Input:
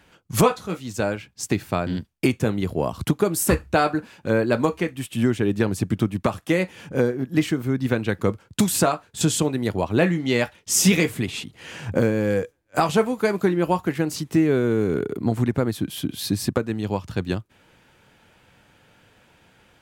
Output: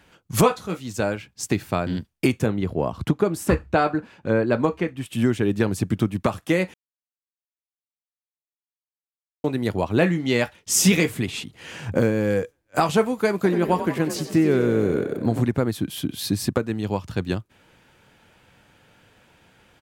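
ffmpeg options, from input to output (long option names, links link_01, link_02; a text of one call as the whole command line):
ffmpeg -i in.wav -filter_complex "[0:a]asettb=1/sr,asplit=3[link_01][link_02][link_03];[link_01]atrim=end=2.464[link_04];[link_02]atrim=start=2.46:end=5.06,asetpts=PTS-STARTPTS,afade=type=in:duration=0.004:curve=qsin,afade=type=out:start_time=2.596:duration=0.004:curve=qsin,lowpass=frequency=2500:poles=1[link_05];[link_03]atrim=start=5.056[link_06];[link_04][link_05]acrossfade=duration=0.004:curve1=hsin:curve2=qsin[link_07];[link_07][link_06]acrossfade=duration=0.004:curve1=qsin:curve2=hsin,asplit=3[link_08][link_09][link_10];[link_08]afade=type=out:start_time=13.43:duration=0.02[link_11];[link_09]asplit=8[link_12][link_13][link_14][link_15][link_16][link_17][link_18][link_19];[link_13]adelay=93,afreqshift=40,volume=-10.5dB[link_20];[link_14]adelay=186,afreqshift=80,volume=-15.2dB[link_21];[link_15]adelay=279,afreqshift=120,volume=-20dB[link_22];[link_16]adelay=372,afreqshift=160,volume=-24.7dB[link_23];[link_17]adelay=465,afreqshift=200,volume=-29.4dB[link_24];[link_18]adelay=558,afreqshift=240,volume=-34.2dB[link_25];[link_19]adelay=651,afreqshift=280,volume=-38.9dB[link_26];[link_12][link_20][link_21][link_22][link_23][link_24][link_25][link_26]amix=inputs=8:normalize=0,afade=type=in:start_time=13.43:duration=0.02,afade=type=out:start_time=15.44:duration=0.02[link_27];[link_10]afade=type=in:start_time=15.44:duration=0.02[link_28];[link_11][link_27][link_28]amix=inputs=3:normalize=0,asplit=3[link_29][link_30][link_31];[link_29]atrim=end=6.74,asetpts=PTS-STARTPTS,afade=type=out:start_time=6.736:duration=0.004:curve=hsin[link_32];[link_30]atrim=start=6.74:end=9.44,asetpts=PTS-STARTPTS,volume=0[link_33];[link_31]atrim=start=9.44,asetpts=PTS-STARTPTS,afade=type=in:duration=0.004:curve=hsin[link_34];[link_32][link_33][link_34]concat=n=3:v=0:a=1" out.wav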